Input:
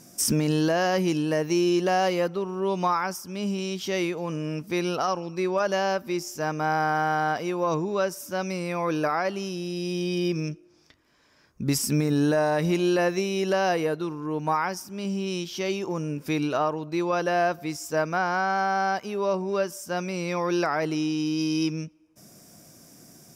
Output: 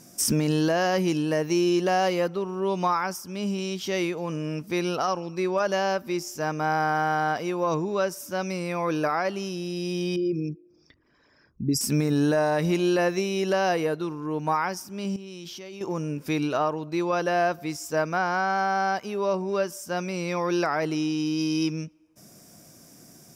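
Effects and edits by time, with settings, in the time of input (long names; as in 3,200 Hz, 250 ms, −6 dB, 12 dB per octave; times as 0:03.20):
0:10.16–0:11.81: spectral envelope exaggerated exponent 2
0:15.16–0:15.81: output level in coarse steps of 20 dB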